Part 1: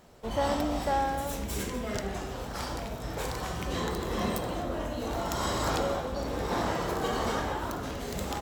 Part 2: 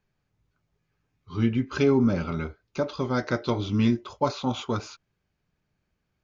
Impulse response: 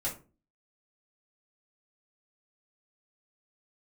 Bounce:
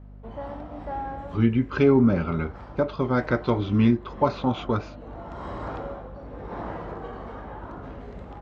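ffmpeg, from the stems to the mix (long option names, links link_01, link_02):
-filter_complex "[0:a]lowpass=1600,bandreject=frequency=49.63:width_type=h:width=4,bandreject=frequency=99.26:width_type=h:width=4,bandreject=frequency=148.89:width_type=h:width=4,bandreject=frequency=198.52:width_type=h:width=4,bandreject=frequency=248.15:width_type=h:width=4,bandreject=frequency=297.78:width_type=h:width=4,bandreject=frequency=347.41:width_type=h:width=4,bandreject=frequency=397.04:width_type=h:width=4,bandreject=frequency=446.67:width_type=h:width=4,bandreject=frequency=496.3:width_type=h:width=4,bandreject=frequency=545.93:width_type=h:width=4,bandreject=frequency=595.56:width_type=h:width=4,bandreject=frequency=645.19:width_type=h:width=4,bandreject=frequency=694.82:width_type=h:width=4,bandreject=frequency=744.45:width_type=h:width=4,bandreject=frequency=794.08:width_type=h:width=4,bandreject=frequency=843.71:width_type=h:width=4,bandreject=frequency=893.34:width_type=h:width=4,bandreject=frequency=942.97:width_type=h:width=4,bandreject=frequency=992.6:width_type=h:width=4,bandreject=frequency=1042.23:width_type=h:width=4,bandreject=frequency=1091.86:width_type=h:width=4,bandreject=frequency=1141.49:width_type=h:width=4,bandreject=frequency=1191.12:width_type=h:width=4,bandreject=frequency=1240.75:width_type=h:width=4,bandreject=frequency=1290.38:width_type=h:width=4,bandreject=frequency=1340.01:width_type=h:width=4,bandreject=frequency=1389.64:width_type=h:width=4,bandreject=frequency=1439.27:width_type=h:width=4,bandreject=frequency=1488.9:width_type=h:width=4,bandreject=frequency=1538.53:width_type=h:width=4,bandreject=frequency=1588.16:width_type=h:width=4,bandreject=frequency=1637.79:width_type=h:width=4,bandreject=frequency=1687.42:width_type=h:width=4,bandreject=frequency=1737.05:width_type=h:width=4,bandreject=frequency=1786.68:width_type=h:width=4,bandreject=frequency=1836.31:width_type=h:width=4,bandreject=frequency=1885.94:width_type=h:width=4,tremolo=f=0.89:d=0.43,volume=-3dB[link_01];[1:a]lowpass=2600,agate=range=-33dB:threshold=-37dB:ratio=3:detection=peak,volume=3dB,asplit=2[link_02][link_03];[link_03]apad=whole_len=370907[link_04];[link_01][link_04]sidechaincompress=threshold=-21dB:ratio=4:attack=8.6:release=714[link_05];[link_05][link_02]amix=inputs=2:normalize=0,aeval=exprs='val(0)+0.00708*(sin(2*PI*50*n/s)+sin(2*PI*2*50*n/s)/2+sin(2*PI*3*50*n/s)/3+sin(2*PI*4*50*n/s)/4+sin(2*PI*5*50*n/s)/5)':channel_layout=same"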